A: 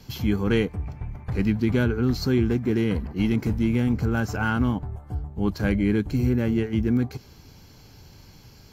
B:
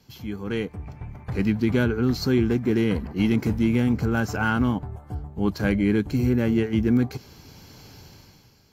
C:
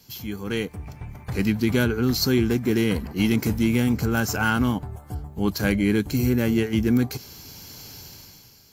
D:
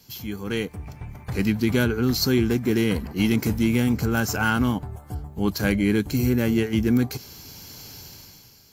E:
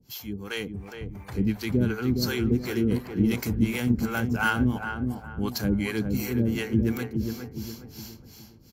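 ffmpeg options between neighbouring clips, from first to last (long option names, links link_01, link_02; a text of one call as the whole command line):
ffmpeg -i in.wav -af "lowshelf=frequency=65:gain=-10.5,dynaudnorm=framelen=110:gausssize=13:maxgain=15dB,volume=-8.5dB" out.wav
ffmpeg -i in.wav -af "crystalizer=i=3:c=0" out.wav
ffmpeg -i in.wav -af anull out.wav
ffmpeg -i in.wav -filter_complex "[0:a]acrossover=split=470[link_01][link_02];[link_01]aeval=exprs='val(0)*(1-1/2+1/2*cos(2*PI*2.8*n/s))':channel_layout=same[link_03];[link_02]aeval=exprs='val(0)*(1-1/2-1/2*cos(2*PI*2.8*n/s))':channel_layout=same[link_04];[link_03][link_04]amix=inputs=2:normalize=0,asplit=2[link_05][link_06];[link_06]adelay=413,lowpass=frequency=1200:poles=1,volume=-5dB,asplit=2[link_07][link_08];[link_08]adelay=413,lowpass=frequency=1200:poles=1,volume=0.42,asplit=2[link_09][link_10];[link_10]adelay=413,lowpass=frequency=1200:poles=1,volume=0.42,asplit=2[link_11][link_12];[link_12]adelay=413,lowpass=frequency=1200:poles=1,volume=0.42,asplit=2[link_13][link_14];[link_14]adelay=413,lowpass=frequency=1200:poles=1,volume=0.42[link_15];[link_07][link_09][link_11][link_13][link_15]amix=inputs=5:normalize=0[link_16];[link_05][link_16]amix=inputs=2:normalize=0" out.wav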